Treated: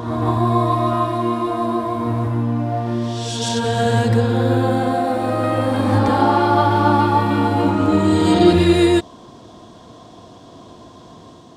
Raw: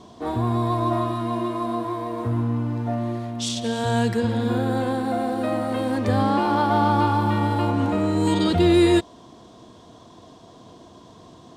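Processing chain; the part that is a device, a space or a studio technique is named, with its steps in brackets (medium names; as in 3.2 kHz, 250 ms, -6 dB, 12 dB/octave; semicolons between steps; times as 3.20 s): reverse reverb (reverse; reverberation RT60 1.7 s, pre-delay 113 ms, DRR 0 dB; reverse); trim +2.5 dB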